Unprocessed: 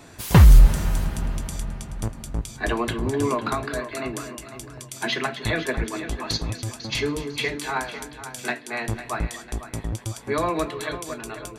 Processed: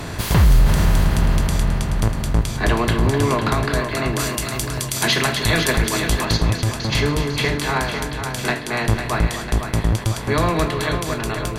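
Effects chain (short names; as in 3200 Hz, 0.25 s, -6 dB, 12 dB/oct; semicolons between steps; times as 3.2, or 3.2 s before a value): per-bin compression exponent 0.6; 4.19–6.25 high shelf 3800 Hz +11.5 dB; maximiser +7.5 dB; gain -6 dB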